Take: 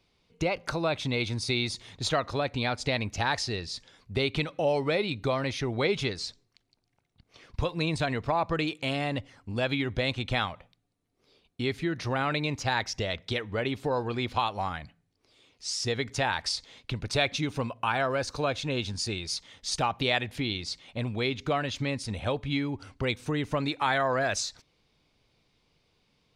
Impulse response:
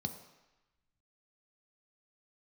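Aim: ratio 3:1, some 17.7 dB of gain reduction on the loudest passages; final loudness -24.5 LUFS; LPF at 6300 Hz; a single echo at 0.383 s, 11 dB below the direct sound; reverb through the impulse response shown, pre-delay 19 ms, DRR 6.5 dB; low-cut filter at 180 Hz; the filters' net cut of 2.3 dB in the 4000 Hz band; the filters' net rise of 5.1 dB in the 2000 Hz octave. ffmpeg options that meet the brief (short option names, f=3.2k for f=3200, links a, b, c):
-filter_complex "[0:a]highpass=180,lowpass=6.3k,equalizer=f=2k:t=o:g=7.5,equalizer=f=4k:t=o:g=-4.5,acompressor=threshold=-45dB:ratio=3,aecho=1:1:383:0.282,asplit=2[a][b];[1:a]atrim=start_sample=2205,adelay=19[c];[b][c]afir=irnorm=-1:irlink=0,volume=-6.5dB[d];[a][d]amix=inputs=2:normalize=0,volume=17dB"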